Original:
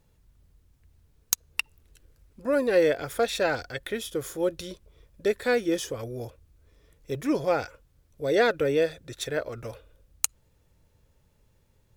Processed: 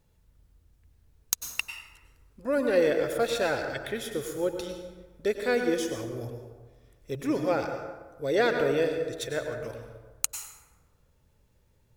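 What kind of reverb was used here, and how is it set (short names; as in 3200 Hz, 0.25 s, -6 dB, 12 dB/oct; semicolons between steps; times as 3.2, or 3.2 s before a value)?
plate-style reverb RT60 1.3 s, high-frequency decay 0.5×, pre-delay 85 ms, DRR 5 dB; gain -2.5 dB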